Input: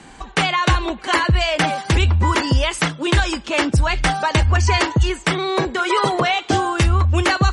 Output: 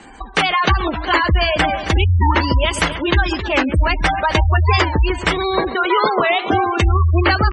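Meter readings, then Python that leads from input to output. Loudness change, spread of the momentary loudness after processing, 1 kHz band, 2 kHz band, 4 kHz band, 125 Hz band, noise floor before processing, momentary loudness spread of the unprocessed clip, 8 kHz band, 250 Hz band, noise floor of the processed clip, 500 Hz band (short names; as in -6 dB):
+1.5 dB, 3 LU, +2.5 dB, +2.0 dB, +0.5 dB, +1.0 dB, -41 dBFS, 4 LU, -5.5 dB, +1.0 dB, -29 dBFS, +2.5 dB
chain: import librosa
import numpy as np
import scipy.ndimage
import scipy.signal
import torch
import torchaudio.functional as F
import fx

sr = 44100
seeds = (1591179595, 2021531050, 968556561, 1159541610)

y = fx.peak_eq(x, sr, hz=140.0, db=-14.0, octaves=0.48)
y = fx.echo_heads(y, sr, ms=135, heads='first and second', feedback_pct=52, wet_db=-14)
y = fx.spec_gate(y, sr, threshold_db=-20, keep='strong')
y = fx.record_warp(y, sr, rpm=45.0, depth_cents=160.0)
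y = y * 10.0 ** (2.5 / 20.0)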